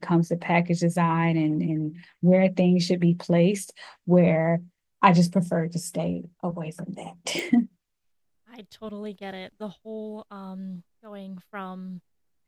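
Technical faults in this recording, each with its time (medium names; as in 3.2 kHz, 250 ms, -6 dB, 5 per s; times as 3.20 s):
7.39 s: pop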